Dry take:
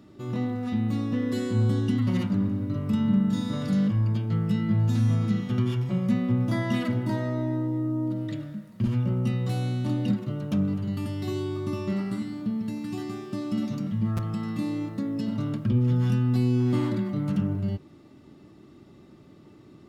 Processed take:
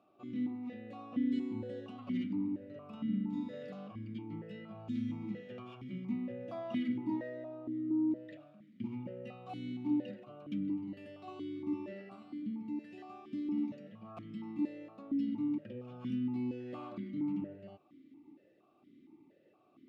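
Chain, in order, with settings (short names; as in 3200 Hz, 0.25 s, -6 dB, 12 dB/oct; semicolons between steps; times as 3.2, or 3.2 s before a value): vowel sequencer 4.3 Hz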